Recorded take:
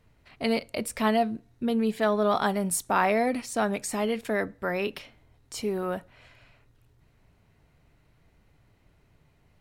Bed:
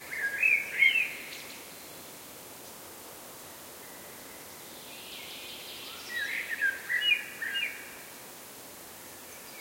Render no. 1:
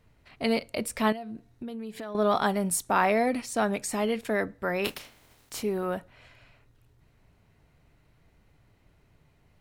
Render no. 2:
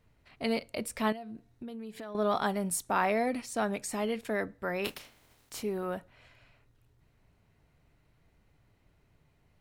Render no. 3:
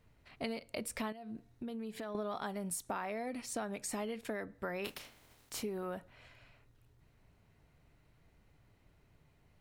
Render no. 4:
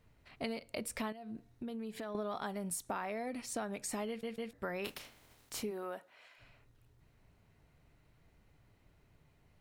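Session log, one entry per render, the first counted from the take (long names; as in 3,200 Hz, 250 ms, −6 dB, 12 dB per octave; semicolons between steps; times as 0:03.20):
0:01.12–0:02.15: downward compressor 8 to 1, threshold −34 dBFS; 0:04.84–0:05.61: compressing power law on the bin magnitudes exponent 0.47
level −4.5 dB
downward compressor 16 to 1, threshold −35 dBFS, peak gain reduction 13 dB
0:04.08: stutter in place 0.15 s, 3 plays; 0:05.70–0:06.38: high-pass filter 260 Hz → 680 Hz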